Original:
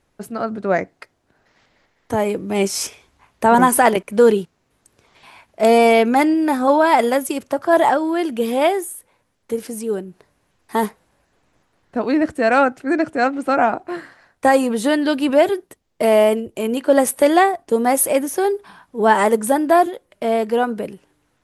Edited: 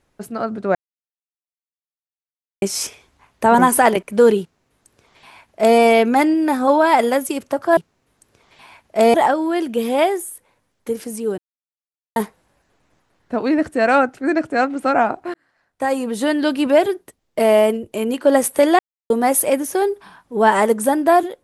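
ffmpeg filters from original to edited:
-filter_complex "[0:a]asplit=10[a][b][c][d][e][f][g][h][i][j];[a]atrim=end=0.75,asetpts=PTS-STARTPTS,afade=t=out:st=0.746:d=0.004:c=hsin[k];[b]atrim=start=0.75:end=2.62,asetpts=PTS-STARTPTS,volume=0[l];[c]atrim=start=2.62:end=7.772,asetpts=PTS-STARTPTS,afade=t=in:d=0.004:c=hsin[m];[d]atrim=start=4.408:end=5.782[n];[e]atrim=start=7.768:end=10.01,asetpts=PTS-STARTPTS,afade=t=out:st=2.238:d=0.004:c=hsin[o];[f]atrim=start=10.01:end=10.79,asetpts=PTS-STARTPTS,volume=0[p];[g]atrim=start=10.79:end=13.97,asetpts=PTS-STARTPTS,afade=t=in:d=0.004:c=hsin,afade=t=out:st=3.176:d=0.004:c=hsin[q];[h]atrim=start=13.97:end=17.42,asetpts=PTS-STARTPTS,afade=t=in:d=1.1,afade=t=out:st=3.446:d=0.004:c=hsin[r];[i]atrim=start=17.42:end=17.73,asetpts=PTS-STARTPTS,volume=0[s];[j]atrim=start=17.73,asetpts=PTS-STARTPTS,afade=t=in:d=0.004:c=hsin[t];[k][l][m]concat=n=3:v=0:a=1[u];[u][n]acrossfade=d=0.004:c1=hsin:c2=hsin[v];[o][p][q][r][s][t]concat=n=6:v=0:a=1[w];[v][w]acrossfade=d=0.004:c1=hsin:c2=hsin"

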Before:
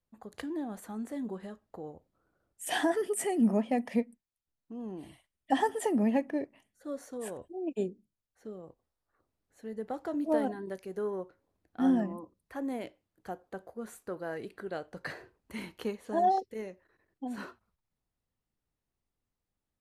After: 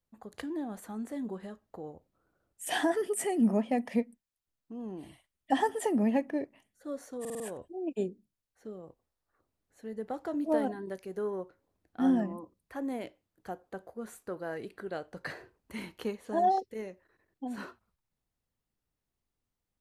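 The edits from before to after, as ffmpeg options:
-filter_complex "[0:a]asplit=5[a][b][c][d][e];[a]atrim=end=7.252[f];[b]atrim=start=7.198:end=7.252[g];[c]atrim=start=7.198:end=7.252[h];[d]atrim=start=7.198:end=7.252[i];[e]atrim=start=7.198[j];[f][g]acrossfade=d=0.004:c1=hsin:c2=hsin[k];[k][h]acrossfade=d=0.004:c1=hsin:c2=hsin[l];[l][i]acrossfade=d=0.004:c1=hsin:c2=hsin[m];[m][j]acrossfade=d=0.004:c1=hsin:c2=hsin"

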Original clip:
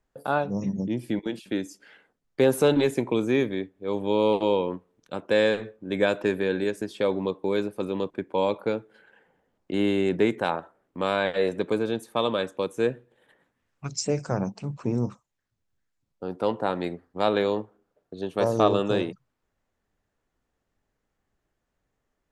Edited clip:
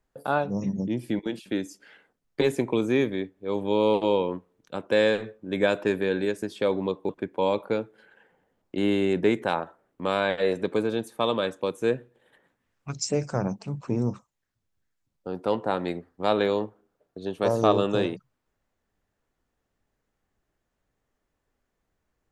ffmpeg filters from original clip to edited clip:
-filter_complex "[0:a]asplit=3[a][b][c];[a]atrim=end=2.412[d];[b]atrim=start=2.798:end=7.482[e];[c]atrim=start=8.048[f];[d][e]acrossfade=d=0.004:c1=hsin:c2=hsin[g];[g][f]acrossfade=d=0.004:c1=hsin:c2=hsin"

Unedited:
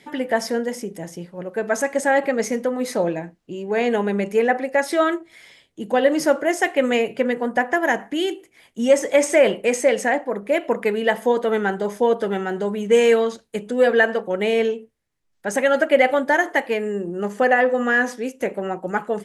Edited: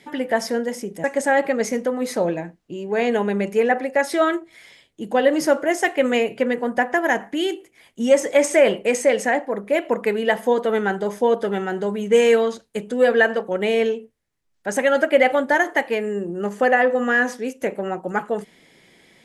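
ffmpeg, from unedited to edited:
-filter_complex "[0:a]asplit=2[a][b];[a]atrim=end=1.042[c];[b]atrim=start=1.828[d];[c][d]acrossfade=d=0.004:c1=hsin:c2=hsin"

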